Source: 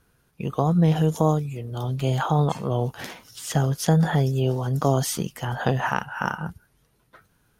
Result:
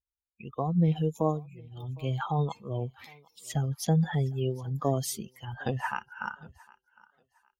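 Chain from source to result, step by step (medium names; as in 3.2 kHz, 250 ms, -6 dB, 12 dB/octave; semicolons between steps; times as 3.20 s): expander on every frequency bin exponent 2; thinning echo 758 ms, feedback 27%, high-pass 350 Hz, level -23 dB; trim -3.5 dB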